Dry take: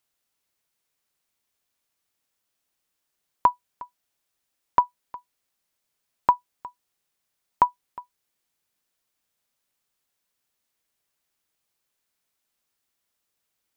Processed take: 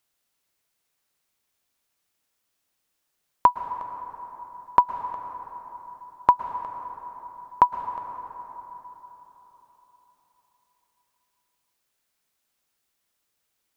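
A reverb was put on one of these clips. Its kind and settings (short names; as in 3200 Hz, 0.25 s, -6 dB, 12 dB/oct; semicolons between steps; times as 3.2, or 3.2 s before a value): plate-style reverb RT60 4.2 s, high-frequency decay 0.45×, pre-delay 0.1 s, DRR 8.5 dB; gain +2 dB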